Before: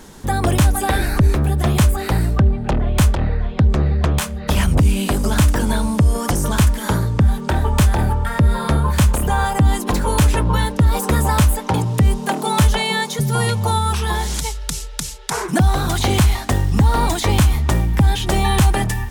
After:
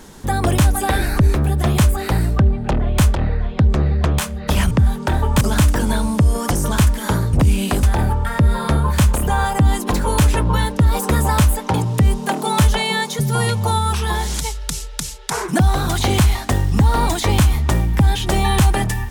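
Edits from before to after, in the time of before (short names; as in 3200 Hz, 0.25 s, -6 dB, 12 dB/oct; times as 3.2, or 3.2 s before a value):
4.71–5.21 swap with 7.13–7.83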